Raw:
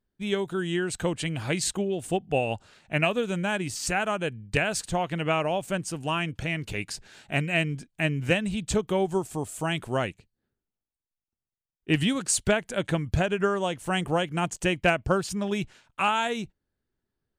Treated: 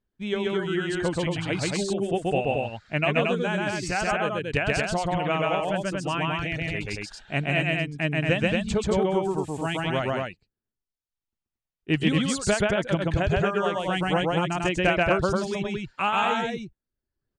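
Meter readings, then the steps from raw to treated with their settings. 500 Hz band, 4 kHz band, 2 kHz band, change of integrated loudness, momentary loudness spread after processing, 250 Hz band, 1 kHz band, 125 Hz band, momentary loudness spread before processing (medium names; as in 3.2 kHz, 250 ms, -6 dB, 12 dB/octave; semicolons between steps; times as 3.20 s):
+2.5 dB, +1.0 dB, +2.0 dB, +2.0 dB, 6 LU, +2.0 dB, +2.5 dB, +2.0 dB, 7 LU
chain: reverb removal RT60 0.78 s; distance through air 84 m; on a send: loudspeakers at several distances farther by 45 m -1 dB, 78 m -3 dB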